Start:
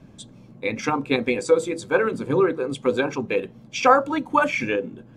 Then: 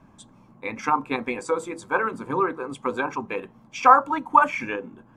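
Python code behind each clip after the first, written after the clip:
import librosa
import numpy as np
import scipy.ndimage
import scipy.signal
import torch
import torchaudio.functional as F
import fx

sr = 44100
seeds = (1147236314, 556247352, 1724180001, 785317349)

y = fx.graphic_eq(x, sr, hz=(125, 500, 1000, 4000), db=(-5, -6, 12, -6))
y = y * librosa.db_to_amplitude(-4.0)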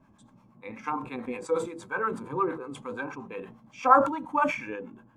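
y = fx.hpss(x, sr, part='percussive', gain_db=-12)
y = fx.harmonic_tremolo(y, sr, hz=8.5, depth_pct=70, crossover_hz=650.0)
y = fx.sustainer(y, sr, db_per_s=100.0)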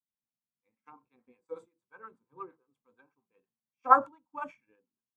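y = fx.upward_expand(x, sr, threshold_db=-45.0, expansion=2.5)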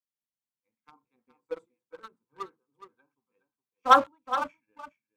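y = fx.leveller(x, sr, passes=2)
y = y + 10.0 ** (-12.0 / 20.0) * np.pad(y, (int(417 * sr / 1000.0), 0))[:len(y)]
y = y * librosa.db_to_amplitude(-1.5)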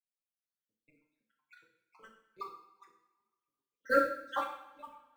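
y = fx.spec_dropout(x, sr, seeds[0], share_pct=72)
y = fx.mod_noise(y, sr, seeds[1], snr_db=29)
y = fx.rev_double_slope(y, sr, seeds[2], early_s=0.67, late_s=1.8, knee_db=-18, drr_db=0.0)
y = y * librosa.db_to_amplitude(-4.0)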